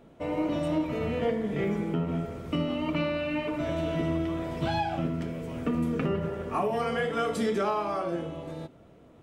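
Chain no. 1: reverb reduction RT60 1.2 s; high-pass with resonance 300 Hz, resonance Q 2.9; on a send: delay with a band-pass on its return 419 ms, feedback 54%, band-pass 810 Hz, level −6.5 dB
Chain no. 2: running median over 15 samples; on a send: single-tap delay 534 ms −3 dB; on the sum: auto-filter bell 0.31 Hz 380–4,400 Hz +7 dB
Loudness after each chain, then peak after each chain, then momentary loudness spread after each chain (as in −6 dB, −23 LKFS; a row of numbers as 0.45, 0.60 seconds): −27.5, −27.5 LKFS; −12.0, −10.5 dBFS; 10, 4 LU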